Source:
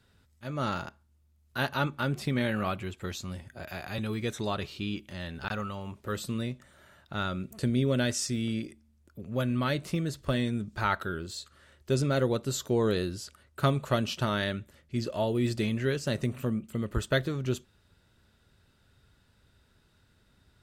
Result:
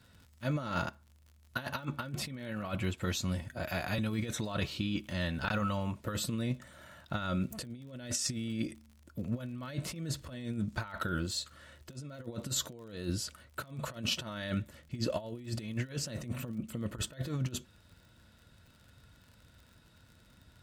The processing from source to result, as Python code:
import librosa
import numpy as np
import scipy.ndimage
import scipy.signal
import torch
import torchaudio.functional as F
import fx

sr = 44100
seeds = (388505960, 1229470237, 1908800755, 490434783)

y = fx.over_compress(x, sr, threshold_db=-34.0, ratio=-0.5)
y = fx.notch_comb(y, sr, f0_hz=400.0)
y = fx.dmg_crackle(y, sr, seeds[0], per_s=53.0, level_db=-48.0)